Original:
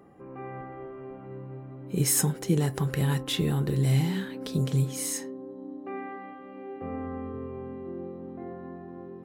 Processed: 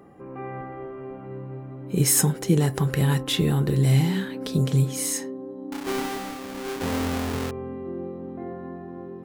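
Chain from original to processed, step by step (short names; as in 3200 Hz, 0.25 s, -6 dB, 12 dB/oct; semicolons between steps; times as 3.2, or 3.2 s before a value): 5.72–7.51 half-waves squared off; gain +4.5 dB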